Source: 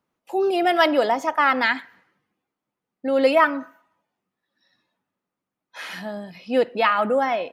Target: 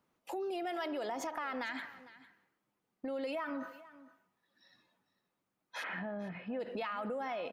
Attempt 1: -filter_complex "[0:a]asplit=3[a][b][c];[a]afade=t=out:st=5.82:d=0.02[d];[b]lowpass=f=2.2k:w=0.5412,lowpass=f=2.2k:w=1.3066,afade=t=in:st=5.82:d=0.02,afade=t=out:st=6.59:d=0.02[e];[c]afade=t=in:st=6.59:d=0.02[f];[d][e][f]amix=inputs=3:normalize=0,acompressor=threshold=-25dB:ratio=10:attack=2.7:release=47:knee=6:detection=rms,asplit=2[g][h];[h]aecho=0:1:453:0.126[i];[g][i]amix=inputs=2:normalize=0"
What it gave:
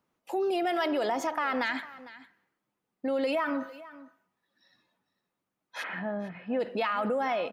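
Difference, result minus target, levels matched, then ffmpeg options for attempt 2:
compressor: peak gain reduction -9.5 dB
-filter_complex "[0:a]asplit=3[a][b][c];[a]afade=t=out:st=5.82:d=0.02[d];[b]lowpass=f=2.2k:w=0.5412,lowpass=f=2.2k:w=1.3066,afade=t=in:st=5.82:d=0.02,afade=t=out:st=6.59:d=0.02[e];[c]afade=t=in:st=6.59:d=0.02[f];[d][e][f]amix=inputs=3:normalize=0,acompressor=threshold=-35.5dB:ratio=10:attack=2.7:release=47:knee=6:detection=rms,asplit=2[g][h];[h]aecho=0:1:453:0.126[i];[g][i]amix=inputs=2:normalize=0"

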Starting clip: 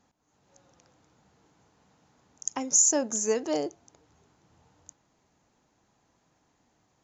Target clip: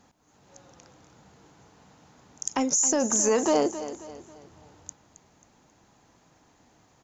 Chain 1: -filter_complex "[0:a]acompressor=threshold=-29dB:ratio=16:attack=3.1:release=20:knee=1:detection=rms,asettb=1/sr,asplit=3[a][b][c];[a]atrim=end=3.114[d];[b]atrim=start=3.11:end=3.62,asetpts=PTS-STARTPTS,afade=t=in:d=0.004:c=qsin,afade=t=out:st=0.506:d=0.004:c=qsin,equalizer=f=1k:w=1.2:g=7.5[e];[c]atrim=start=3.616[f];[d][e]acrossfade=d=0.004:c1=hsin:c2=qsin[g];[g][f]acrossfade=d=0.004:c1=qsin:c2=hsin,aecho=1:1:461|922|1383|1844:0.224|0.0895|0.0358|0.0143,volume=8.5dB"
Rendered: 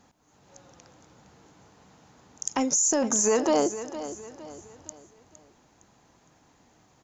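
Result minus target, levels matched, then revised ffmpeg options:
echo 0.192 s late
-filter_complex "[0:a]acompressor=threshold=-29dB:ratio=16:attack=3.1:release=20:knee=1:detection=rms,asettb=1/sr,asplit=3[a][b][c];[a]atrim=end=3.114[d];[b]atrim=start=3.11:end=3.62,asetpts=PTS-STARTPTS,afade=t=in:d=0.004:c=qsin,afade=t=out:st=0.506:d=0.004:c=qsin,equalizer=f=1k:w=1.2:g=7.5[e];[c]atrim=start=3.616[f];[d][e]acrossfade=d=0.004:c1=hsin:c2=qsin[g];[g][f]acrossfade=d=0.004:c1=qsin:c2=hsin,aecho=1:1:269|538|807|1076:0.224|0.0895|0.0358|0.0143,volume=8.5dB"

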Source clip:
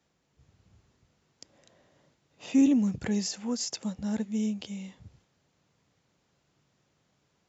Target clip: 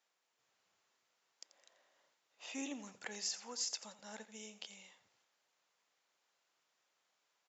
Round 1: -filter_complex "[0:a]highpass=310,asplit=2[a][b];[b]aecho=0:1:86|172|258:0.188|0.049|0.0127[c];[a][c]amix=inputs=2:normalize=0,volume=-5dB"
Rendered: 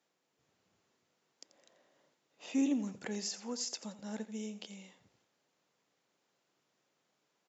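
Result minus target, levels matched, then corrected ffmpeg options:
250 Hz band +8.5 dB
-filter_complex "[0:a]highpass=780,asplit=2[a][b];[b]aecho=0:1:86|172|258:0.188|0.049|0.0127[c];[a][c]amix=inputs=2:normalize=0,volume=-5dB"

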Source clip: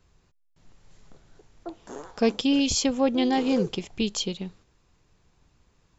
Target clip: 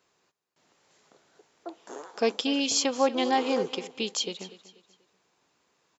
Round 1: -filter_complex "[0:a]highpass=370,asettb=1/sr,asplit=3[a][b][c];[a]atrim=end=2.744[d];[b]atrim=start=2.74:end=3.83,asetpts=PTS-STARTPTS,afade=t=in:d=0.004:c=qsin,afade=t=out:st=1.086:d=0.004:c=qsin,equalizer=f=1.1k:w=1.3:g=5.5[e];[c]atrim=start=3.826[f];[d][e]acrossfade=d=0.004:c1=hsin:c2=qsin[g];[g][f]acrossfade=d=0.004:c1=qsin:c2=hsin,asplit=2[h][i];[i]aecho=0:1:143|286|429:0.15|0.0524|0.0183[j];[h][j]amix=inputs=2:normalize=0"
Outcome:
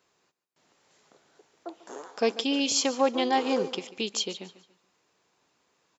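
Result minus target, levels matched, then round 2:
echo 0.1 s early
-filter_complex "[0:a]highpass=370,asettb=1/sr,asplit=3[a][b][c];[a]atrim=end=2.744[d];[b]atrim=start=2.74:end=3.83,asetpts=PTS-STARTPTS,afade=t=in:d=0.004:c=qsin,afade=t=out:st=1.086:d=0.004:c=qsin,equalizer=f=1.1k:w=1.3:g=5.5[e];[c]atrim=start=3.826[f];[d][e]acrossfade=d=0.004:c1=hsin:c2=qsin[g];[g][f]acrossfade=d=0.004:c1=qsin:c2=hsin,asplit=2[h][i];[i]aecho=0:1:243|486|729:0.15|0.0524|0.0183[j];[h][j]amix=inputs=2:normalize=0"

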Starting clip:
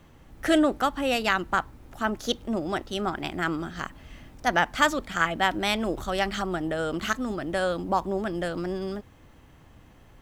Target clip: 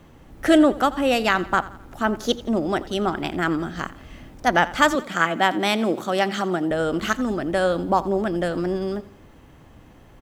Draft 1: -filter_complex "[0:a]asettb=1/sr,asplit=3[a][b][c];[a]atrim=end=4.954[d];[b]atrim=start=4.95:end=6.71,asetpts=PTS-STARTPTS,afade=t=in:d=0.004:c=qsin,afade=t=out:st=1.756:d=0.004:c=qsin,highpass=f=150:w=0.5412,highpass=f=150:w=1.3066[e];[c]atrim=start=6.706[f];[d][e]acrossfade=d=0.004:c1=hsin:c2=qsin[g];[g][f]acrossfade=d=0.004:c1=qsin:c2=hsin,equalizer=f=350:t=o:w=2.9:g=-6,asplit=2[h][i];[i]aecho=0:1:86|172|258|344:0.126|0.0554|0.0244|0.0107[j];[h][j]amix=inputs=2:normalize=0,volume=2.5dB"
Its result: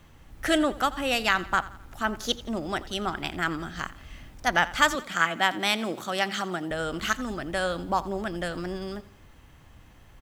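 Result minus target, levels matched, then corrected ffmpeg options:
250 Hz band -4.0 dB
-filter_complex "[0:a]asettb=1/sr,asplit=3[a][b][c];[a]atrim=end=4.954[d];[b]atrim=start=4.95:end=6.71,asetpts=PTS-STARTPTS,afade=t=in:d=0.004:c=qsin,afade=t=out:st=1.756:d=0.004:c=qsin,highpass=f=150:w=0.5412,highpass=f=150:w=1.3066[e];[c]atrim=start=6.706[f];[d][e]acrossfade=d=0.004:c1=hsin:c2=qsin[g];[g][f]acrossfade=d=0.004:c1=qsin:c2=hsin,equalizer=f=350:t=o:w=2.9:g=4,asplit=2[h][i];[i]aecho=0:1:86|172|258|344:0.126|0.0554|0.0244|0.0107[j];[h][j]amix=inputs=2:normalize=0,volume=2.5dB"

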